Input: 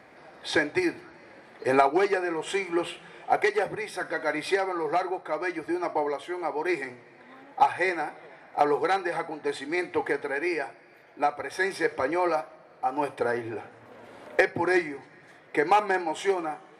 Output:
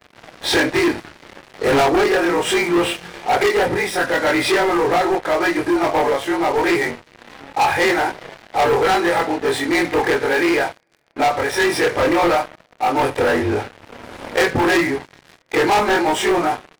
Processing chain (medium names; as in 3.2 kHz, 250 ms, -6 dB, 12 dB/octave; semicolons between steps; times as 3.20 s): short-time spectra conjugated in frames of 58 ms; bass shelf 100 Hz +11 dB; waveshaping leveller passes 5